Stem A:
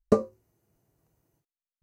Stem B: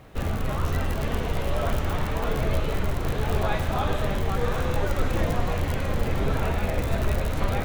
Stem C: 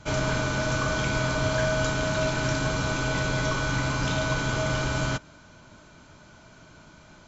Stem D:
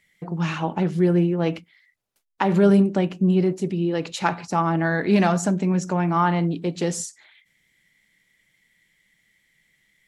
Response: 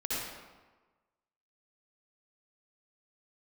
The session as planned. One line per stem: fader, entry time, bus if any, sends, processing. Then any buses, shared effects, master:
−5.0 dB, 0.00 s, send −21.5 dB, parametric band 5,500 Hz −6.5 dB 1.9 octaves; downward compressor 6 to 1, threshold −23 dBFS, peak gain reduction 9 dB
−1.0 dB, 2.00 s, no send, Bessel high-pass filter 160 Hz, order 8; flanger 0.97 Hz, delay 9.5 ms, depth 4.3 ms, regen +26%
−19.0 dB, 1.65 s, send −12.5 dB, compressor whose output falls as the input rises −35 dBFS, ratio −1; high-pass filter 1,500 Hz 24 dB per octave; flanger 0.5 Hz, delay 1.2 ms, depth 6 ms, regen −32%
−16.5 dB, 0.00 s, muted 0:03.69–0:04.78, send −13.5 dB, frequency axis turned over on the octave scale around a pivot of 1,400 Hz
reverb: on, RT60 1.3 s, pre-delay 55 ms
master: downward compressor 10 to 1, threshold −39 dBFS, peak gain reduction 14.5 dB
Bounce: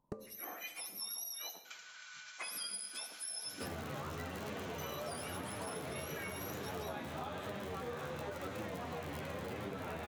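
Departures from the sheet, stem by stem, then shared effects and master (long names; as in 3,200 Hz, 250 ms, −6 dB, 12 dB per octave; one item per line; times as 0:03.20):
stem A −5.0 dB → −12.0 dB
stem B: entry 2.00 s → 3.45 s
stem C −19.0 dB → −7.5 dB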